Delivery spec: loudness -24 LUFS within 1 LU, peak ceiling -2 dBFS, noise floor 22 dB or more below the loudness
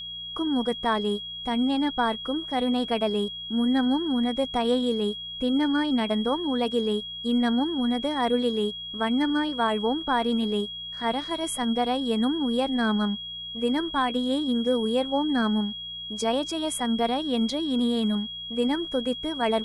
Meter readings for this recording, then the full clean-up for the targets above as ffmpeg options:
hum 60 Hz; harmonics up to 180 Hz; hum level -51 dBFS; steady tone 3300 Hz; tone level -34 dBFS; loudness -26.0 LUFS; peak -12.5 dBFS; loudness target -24.0 LUFS
-> -af "bandreject=f=60:t=h:w=4,bandreject=f=120:t=h:w=4,bandreject=f=180:t=h:w=4"
-af "bandreject=f=3.3k:w=30"
-af "volume=2dB"

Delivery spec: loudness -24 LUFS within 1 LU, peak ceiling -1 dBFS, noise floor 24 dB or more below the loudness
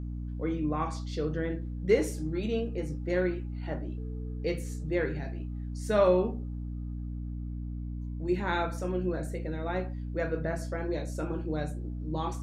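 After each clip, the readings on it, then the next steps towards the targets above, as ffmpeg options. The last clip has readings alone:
hum 60 Hz; harmonics up to 300 Hz; hum level -34 dBFS; loudness -32.5 LUFS; peak -11.0 dBFS; loudness target -24.0 LUFS
-> -af "bandreject=f=60:t=h:w=4,bandreject=f=120:t=h:w=4,bandreject=f=180:t=h:w=4,bandreject=f=240:t=h:w=4,bandreject=f=300:t=h:w=4"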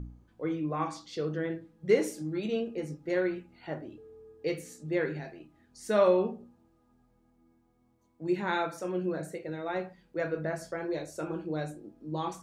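hum none; loudness -32.5 LUFS; peak -12.0 dBFS; loudness target -24.0 LUFS
-> -af "volume=8.5dB"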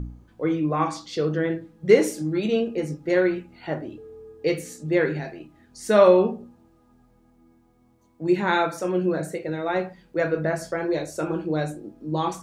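loudness -24.0 LUFS; peak -3.5 dBFS; noise floor -60 dBFS

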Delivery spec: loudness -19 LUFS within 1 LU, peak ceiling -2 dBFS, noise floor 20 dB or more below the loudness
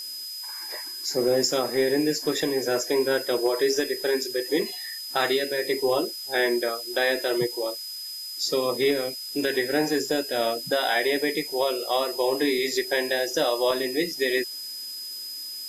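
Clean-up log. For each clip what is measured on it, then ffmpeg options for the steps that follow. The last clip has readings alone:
steady tone 5000 Hz; tone level -34 dBFS; noise floor -36 dBFS; noise floor target -46 dBFS; loudness -25.5 LUFS; peak -12.5 dBFS; loudness target -19.0 LUFS
-> -af "bandreject=f=5k:w=30"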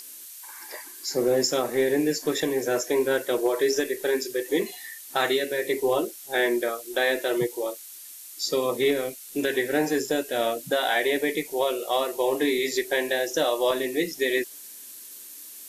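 steady tone none; noise floor -43 dBFS; noise floor target -46 dBFS
-> -af "afftdn=nr=6:nf=-43"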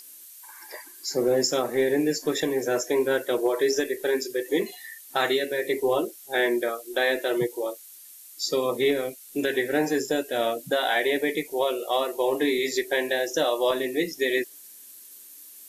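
noise floor -47 dBFS; loudness -25.5 LUFS; peak -13.0 dBFS; loudness target -19.0 LUFS
-> -af "volume=6.5dB"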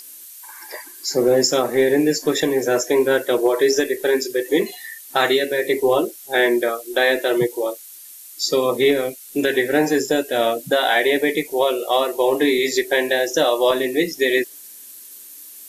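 loudness -19.0 LUFS; peak -6.5 dBFS; noise floor -41 dBFS

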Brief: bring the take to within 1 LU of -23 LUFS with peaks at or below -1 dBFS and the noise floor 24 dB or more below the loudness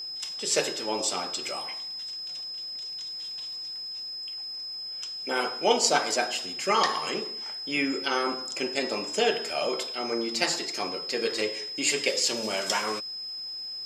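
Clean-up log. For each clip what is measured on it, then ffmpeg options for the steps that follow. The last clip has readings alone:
steady tone 5100 Hz; tone level -34 dBFS; loudness -28.5 LUFS; peak -7.0 dBFS; loudness target -23.0 LUFS
-> -af "bandreject=f=5.1k:w=30"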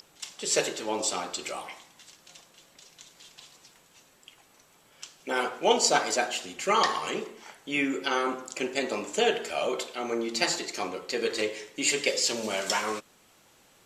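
steady tone none; loudness -28.0 LUFS; peak -7.0 dBFS; loudness target -23.0 LUFS
-> -af "volume=5dB"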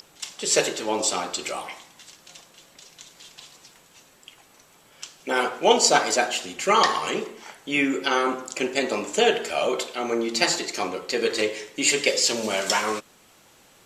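loudness -23.0 LUFS; peak -2.0 dBFS; noise floor -56 dBFS

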